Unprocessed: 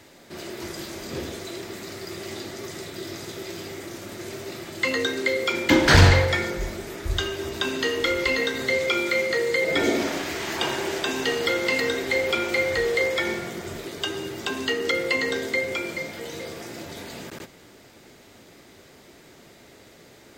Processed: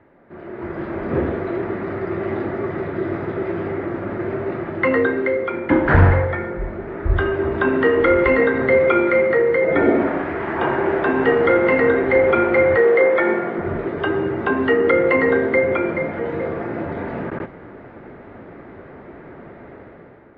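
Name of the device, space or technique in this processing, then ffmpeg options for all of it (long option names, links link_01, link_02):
action camera in a waterproof case: -filter_complex "[0:a]asettb=1/sr,asplit=3[link_01][link_02][link_03];[link_01]atrim=end=12.764[link_04];[link_02]atrim=start=12.76:end=13.59,asetpts=PTS-STARTPTS,afade=type=in:duration=0.004:curve=qsin,afade=type=out:start_time=0.826:duration=0.004:curve=qsin,highpass=240[link_05];[link_03]atrim=start=13.586[link_06];[link_04][link_05]acrossfade=duration=0.004:curve1=hsin:curve2=qsin[link_07];[link_07][link_06]acrossfade=duration=0.004:curve1=qsin:curve2=hsin,lowpass=frequency=1700:width=0.5412,lowpass=frequency=1700:width=1.3066,dynaudnorm=framelen=210:gausssize=7:maxgain=13.5dB,volume=-1dB" -ar 22050 -c:a aac -b:a 64k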